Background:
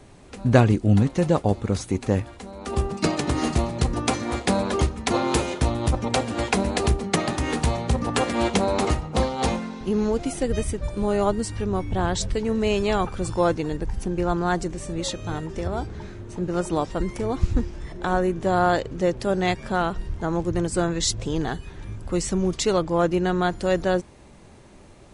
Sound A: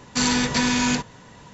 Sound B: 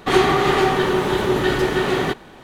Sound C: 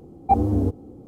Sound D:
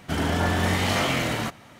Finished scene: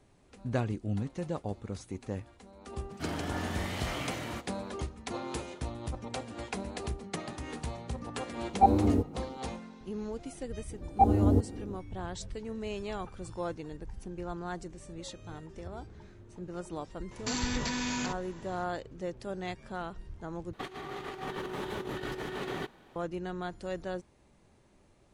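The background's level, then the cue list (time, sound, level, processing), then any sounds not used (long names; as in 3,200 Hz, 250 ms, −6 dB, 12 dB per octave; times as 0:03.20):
background −15 dB
0:02.91: mix in D −13 dB
0:08.32: mix in C −3 dB + parametric band 92 Hz −4.5 dB
0:10.70: mix in C −3.5 dB + speech leveller
0:17.11: mix in A −5.5 dB + downward compressor, threshold −24 dBFS
0:20.53: overwrite with B −17.5 dB + compressor whose output falls as the input rises −20 dBFS, ratio −0.5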